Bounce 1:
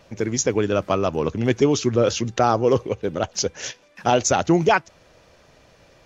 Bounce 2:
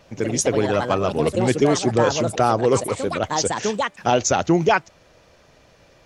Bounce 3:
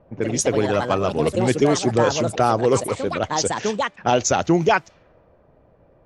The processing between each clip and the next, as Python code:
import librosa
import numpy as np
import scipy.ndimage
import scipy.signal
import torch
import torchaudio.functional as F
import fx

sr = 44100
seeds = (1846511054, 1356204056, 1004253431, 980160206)

y1 = fx.echo_pitch(x, sr, ms=83, semitones=4, count=2, db_per_echo=-6.0)
y2 = fx.env_lowpass(y1, sr, base_hz=790.0, full_db=-16.5)